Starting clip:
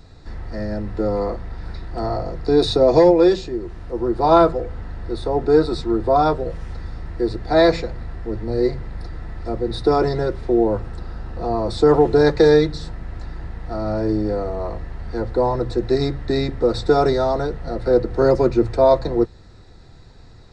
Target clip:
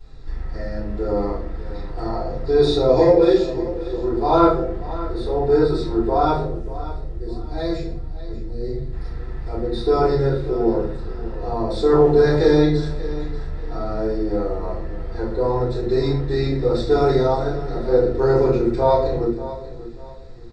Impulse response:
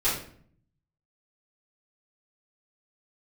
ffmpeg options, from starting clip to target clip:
-filter_complex "[0:a]asettb=1/sr,asplit=3[a][b][c];[a]atrim=end=6.424[d];[b]atrim=start=6.42:end=8.92,asetpts=PTS-STARTPTS,afade=t=in:d=0.004:c=qsin,afade=t=out:st=2.496:d=0.004:c=qsin,equalizer=f=1.2k:w=0.3:g=-14.5[e];[c]atrim=start=8.916[f];[d][e]acrossfade=d=0.004:c1=hsin:c2=qsin[g];[g][f]acrossfade=d=0.004:c1=qsin:c2=hsin,aecho=1:1:587|1174|1761:0.178|0.0533|0.016[h];[1:a]atrim=start_sample=2205[i];[h][i]afir=irnorm=-1:irlink=0,volume=-13dB"

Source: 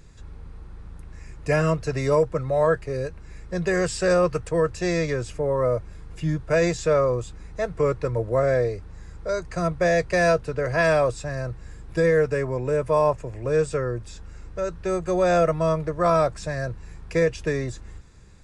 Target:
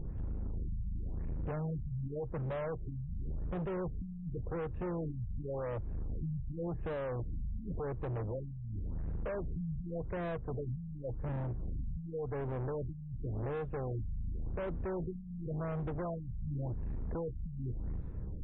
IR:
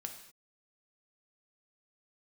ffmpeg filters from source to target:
-af "tiltshelf=f=790:g=8,acompressor=threshold=-29dB:ratio=12,asoftclip=type=hard:threshold=-37.5dB,adynamicsmooth=sensitivity=3:basefreq=1.7k,afftfilt=real='re*lt(b*sr/1024,210*pow(4100/210,0.5+0.5*sin(2*PI*0.9*pts/sr)))':imag='im*lt(b*sr/1024,210*pow(4100/210,0.5+0.5*sin(2*PI*0.9*pts/sr)))':win_size=1024:overlap=0.75,volume=3dB"

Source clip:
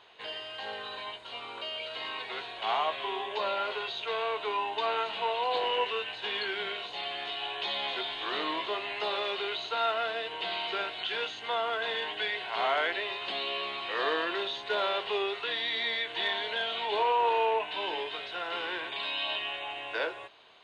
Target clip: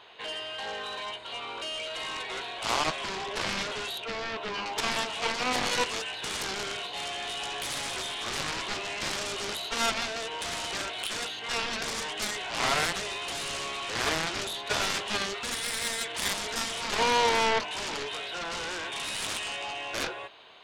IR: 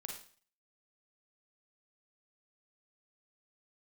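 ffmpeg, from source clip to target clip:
-filter_complex "[0:a]asettb=1/sr,asplit=3[a][b][c];[a]atrim=end=3.984[d];[b]atrim=start=3.98:end=4.66,asetpts=PTS-STARTPTS,afade=t=in:d=0.004:c=qsin,afade=t=out:st=0.676:d=0.004:c=qsin,highshelf=f=2.5k:g=-9.5[e];[c]atrim=start=4.656[f];[d][e]acrossfade=d=0.004:c1=hsin:c2=qsin[g];[g][f]acrossfade=d=0.004:c1=qsin:c2=hsin,aeval=exprs='0.133*(cos(1*acos(clip(val(0)/0.133,-1,1)))-cos(1*PI/2))+0.0531*(cos(7*acos(clip(val(0)/0.133,-1,1)))-cos(7*PI/2))':c=same"

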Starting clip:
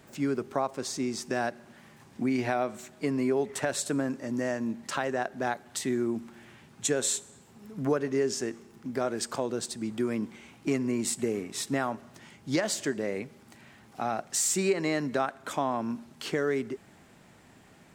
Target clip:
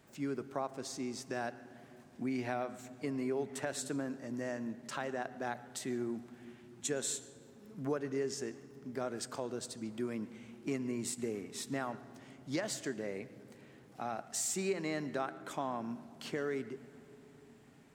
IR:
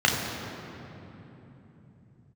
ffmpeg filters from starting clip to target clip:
-filter_complex "[0:a]asplit=2[a][b];[1:a]atrim=start_sample=2205,asetrate=43218,aresample=44100,adelay=111[c];[b][c]afir=irnorm=-1:irlink=0,volume=-33dB[d];[a][d]amix=inputs=2:normalize=0,volume=-8.5dB"

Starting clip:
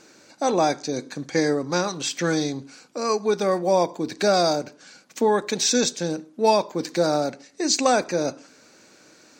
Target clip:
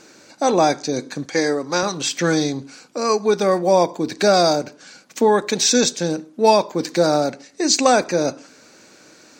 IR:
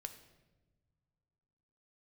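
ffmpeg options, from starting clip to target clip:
-filter_complex "[0:a]asettb=1/sr,asplit=3[a][b][c];[a]atrim=end=1.254[d];[b]atrim=start=1.25:end=1.83,asetpts=PTS-STARTPTS,afade=t=in:d=0.004:c=qsin,afade=t=out:st=0.576:d=0.004:c=qsin,highpass=f=370:p=1[e];[c]atrim=start=1.826[f];[d][e]acrossfade=d=0.004:c1=hsin:c2=qsin[g];[g][f]acrossfade=d=0.004:c1=qsin:c2=hsin,volume=4.5dB"

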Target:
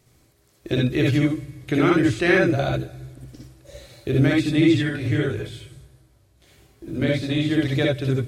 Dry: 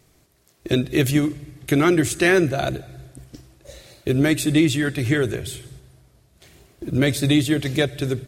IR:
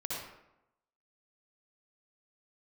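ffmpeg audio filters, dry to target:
-filter_complex "[0:a]acrossover=split=5100[a][b];[b]acompressor=threshold=-50dB:ratio=4:attack=1:release=60[c];[a][c]amix=inputs=2:normalize=0,asplit=3[d][e][f];[d]afade=t=out:st=4.82:d=0.02[g];[e]flanger=delay=18:depth=2.8:speed=2.2,afade=t=in:st=4.82:d=0.02,afade=t=out:st=7.48:d=0.02[h];[f]afade=t=in:st=7.48:d=0.02[i];[g][h][i]amix=inputs=3:normalize=0[j];[1:a]atrim=start_sample=2205,atrim=end_sample=3528[k];[j][k]afir=irnorm=-1:irlink=0"

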